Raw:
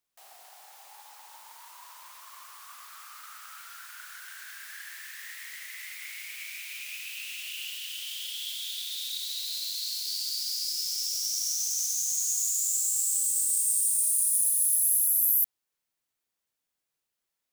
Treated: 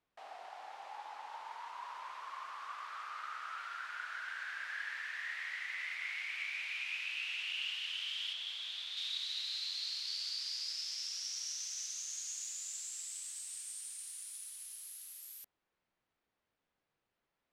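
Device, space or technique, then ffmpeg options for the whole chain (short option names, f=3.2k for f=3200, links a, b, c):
phone in a pocket: -filter_complex "[0:a]lowpass=3.5k,highshelf=f=2.2k:g=-10,asettb=1/sr,asplit=3[a][b][c];[a]atrim=end=8.334[d];[b]atrim=start=8.33:end=8.97,asetpts=PTS-STARTPTS,afade=t=in:d=0.004:c=qsin,afade=t=out:st=0.636:d=0.004:c=qsin,tiltshelf=f=1.2k:g=4.5[e];[c]atrim=start=8.966[f];[d][e]acrossfade=d=0.004:c1=hsin:c2=qsin[g];[g][f]acrossfade=d=0.004:c1=qsin:c2=hsin,volume=8dB"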